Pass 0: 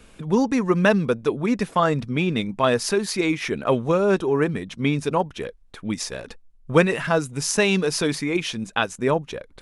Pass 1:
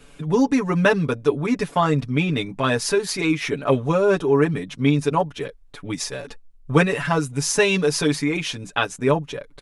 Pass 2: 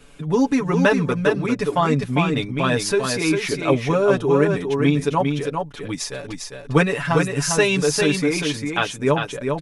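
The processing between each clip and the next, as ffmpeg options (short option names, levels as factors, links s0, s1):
-af "aecho=1:1:7:0.86,volume=0.891"
-af "aecho=1:1:401:0.562"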